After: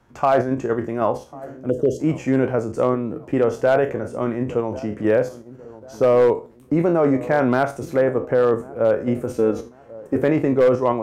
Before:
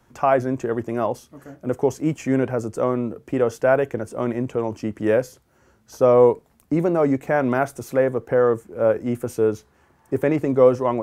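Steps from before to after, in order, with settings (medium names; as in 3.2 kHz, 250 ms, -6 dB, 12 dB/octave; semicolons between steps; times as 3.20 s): spectral sustain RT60 0.31 s; low-pass 3.6 kHz 6 dB/octave; 1.70–2.00 s: spectral selection erased 650–2700 Hz; 9.36–10.16 s: comb 3.8 ms, depth 64%; on a send: feedback echo behind a low-pass 1094 ms, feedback 37%, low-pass 960 Hz, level -18.5 dB; on the sum: hard clipper -9 dBFS, distortion -21 dB; in parallel at +2.5 dB: level held to a coarse grid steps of 11 dB; on the sum: trim -4 dB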